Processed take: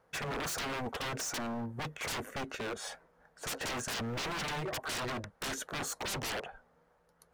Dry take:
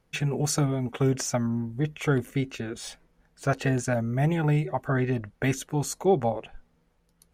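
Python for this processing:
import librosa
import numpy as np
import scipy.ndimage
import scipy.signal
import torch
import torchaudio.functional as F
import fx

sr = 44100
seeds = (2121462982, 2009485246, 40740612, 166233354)

y = fx.highpass(x, sr, hz=81.0, slope=6)
y = fx.band_shelf(y, sr, hz=890.0, db=11.0, octaves=2.3)
y = 10.0 ** (-27.0 / 20.0) * (np.abs((y / 10.0 ** (-27.0 / 20.0) + 3.0) % 4.0 - 2.0) - 1.0)
y = y * 10.0 ** (-4.5 / 20.0)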